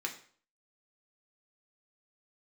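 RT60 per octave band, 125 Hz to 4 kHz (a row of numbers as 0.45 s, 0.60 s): 0.50 s, 0.45 s, 0.50 s, 0.50 s, 0.45 s, 0.45 s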